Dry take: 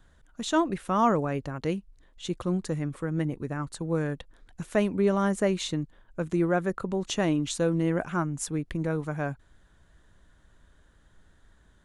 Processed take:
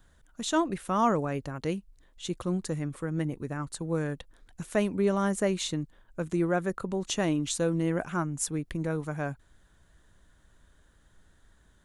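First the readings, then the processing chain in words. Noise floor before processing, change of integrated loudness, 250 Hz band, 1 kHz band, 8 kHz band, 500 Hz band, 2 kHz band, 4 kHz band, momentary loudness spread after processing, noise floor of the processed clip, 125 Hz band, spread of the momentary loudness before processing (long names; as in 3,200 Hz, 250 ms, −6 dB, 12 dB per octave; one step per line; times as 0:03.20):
−61 dBFS, −2.0 dB, −2.0 dB, −2.0 dB, +2.5 dB, −2.0 dB, −1.5 dB, −0.5 dB, 10 LU, −63 dBFS, −2.0 dB, 10 LU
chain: high-shelf EQ 6,700 Hz +8 dB
level −2 dB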